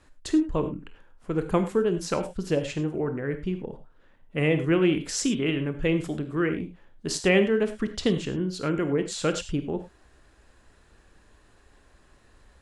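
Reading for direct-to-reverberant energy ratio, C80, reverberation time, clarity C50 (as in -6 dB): 8.5 dB, 14.0 dB, no single decay rate, 11.5 dB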